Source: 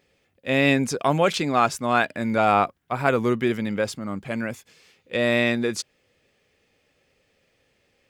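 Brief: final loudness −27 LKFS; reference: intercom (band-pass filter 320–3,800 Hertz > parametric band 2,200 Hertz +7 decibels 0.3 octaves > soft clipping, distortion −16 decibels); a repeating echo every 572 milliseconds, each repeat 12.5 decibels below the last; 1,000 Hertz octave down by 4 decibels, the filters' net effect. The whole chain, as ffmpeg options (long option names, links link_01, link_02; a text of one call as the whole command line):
ffmpeg -i in.wav -af "highpass=320,lowpass=3800,equalizer=frequency=1000:width_type=o:gain=-6,equalizer=frequency=2200:width_type=o:width=0.3:gain=7,aecho=1:1:572|1144|1716:0.237|0.0569|0.0137,asoftclip=threshold=-13dB,volume=-0.5dB" out.wav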